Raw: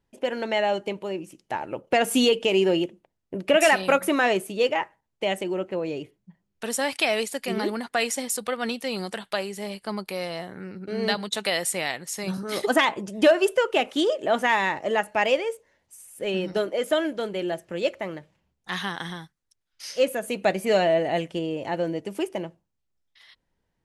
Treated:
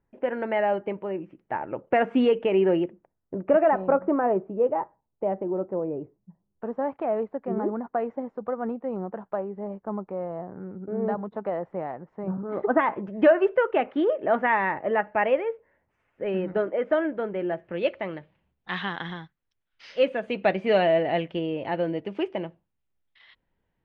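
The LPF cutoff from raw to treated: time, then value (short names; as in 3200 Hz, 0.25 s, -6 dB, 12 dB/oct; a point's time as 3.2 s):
LPF 24 dB/oct
2.85 s 2000 Hz
3.87 s 1100 Hz
12.46 s 1100 Hz
13.03 s 2000 Hz
17.45 s 2000 Hz
17.95 s 3300 Hz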